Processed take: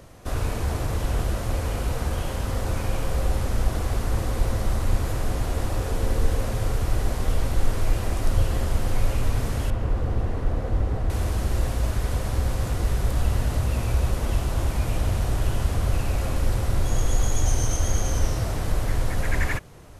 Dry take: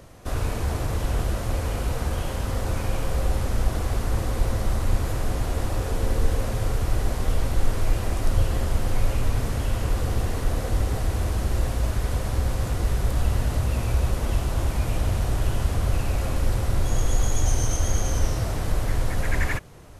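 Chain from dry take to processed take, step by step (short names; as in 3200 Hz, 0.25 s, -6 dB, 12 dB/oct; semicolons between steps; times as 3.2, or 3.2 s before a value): 9.7–11.1 LPF 1200 Hz 6 dB/oct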